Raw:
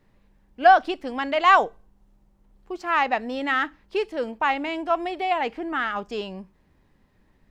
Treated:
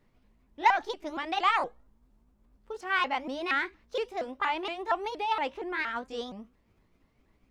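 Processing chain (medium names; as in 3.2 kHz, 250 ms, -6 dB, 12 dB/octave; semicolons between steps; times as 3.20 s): sawtooth pitch modulation +5 st, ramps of 234 ms; transformer saturation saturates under 990 Hz; trim -4.5 dB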